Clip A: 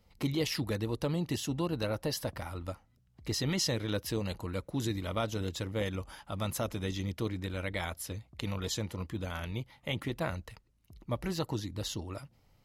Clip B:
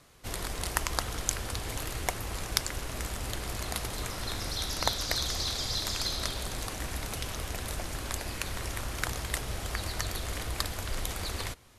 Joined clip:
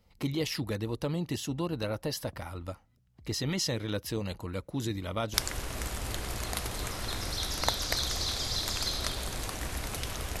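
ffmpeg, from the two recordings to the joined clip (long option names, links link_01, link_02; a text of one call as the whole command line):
ffmpeg -i cue0.wav -i cue1.wav -filter_complex "[0:a]apad=whole_dur=10.4,atrim=end=10.4,atrim=end=5.342[link_01];[1:a]atrim=start=2.528:end=7.59[link_02];[link_01][link_02]acrossfade=duration=0.004:curve1=hsin:curve2=hsin" out.wav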